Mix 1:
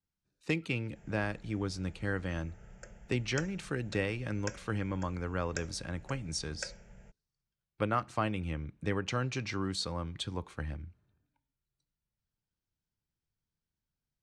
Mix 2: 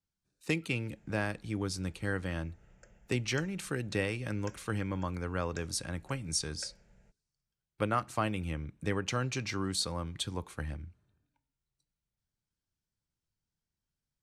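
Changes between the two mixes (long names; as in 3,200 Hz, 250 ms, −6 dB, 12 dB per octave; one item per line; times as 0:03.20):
speech: remove high-frequency loss of the air 71 metres
background −8.5 dB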